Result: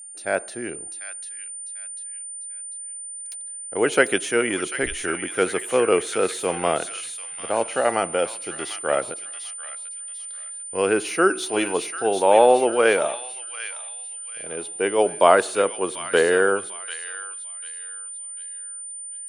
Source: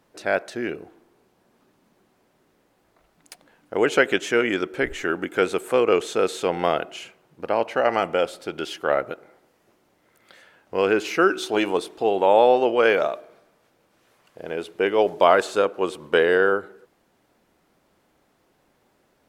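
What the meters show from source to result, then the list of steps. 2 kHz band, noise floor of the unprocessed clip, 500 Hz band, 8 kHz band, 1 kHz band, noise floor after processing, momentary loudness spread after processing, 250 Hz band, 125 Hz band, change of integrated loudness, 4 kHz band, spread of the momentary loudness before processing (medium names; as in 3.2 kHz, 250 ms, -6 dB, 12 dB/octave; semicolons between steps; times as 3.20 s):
0.0 dB, -65 dBFS, 0.0 dB, +16.0 dB, +0.5 dB, -36 dBFS, 15 LU, -1.0 dB, -1.0 dB, -1.5 dB, +0.5 dB, 14 LU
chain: whistle 9 kHz -34 dBFS; feedback echo behind a high-pass 745 ms, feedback 38%, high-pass 1.6 kHz, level -5 dB; three bands expanded up and down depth 40%; trim -1 dB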